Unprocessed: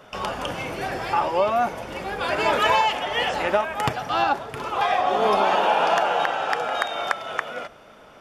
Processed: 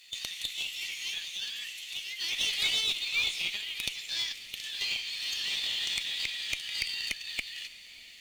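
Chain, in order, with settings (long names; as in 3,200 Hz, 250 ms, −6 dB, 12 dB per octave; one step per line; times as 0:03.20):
Butterworth high-pass 1,900 Hz 48 dB per octave
high-shelf EQ 11,000 Hz −7 dB
in parallel at −1 dB: downward compressor 6 to 1, threshold −40 dBFS, peak gain reduction 16.5 dB
on the sum: formants moved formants +4 semitones
tube saturation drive 16 dB, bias 0.45
log-companded quantiser 6 bits
on a send: feedback delay with all-pass diffusion 618 ms, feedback 48%, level −16 dB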